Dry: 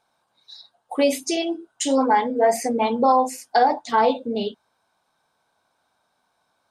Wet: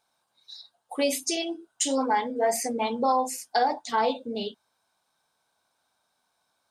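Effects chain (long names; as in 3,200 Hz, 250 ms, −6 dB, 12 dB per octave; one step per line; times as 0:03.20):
high-shelf EQ 3,000 Hz +9 dB
level −7 dB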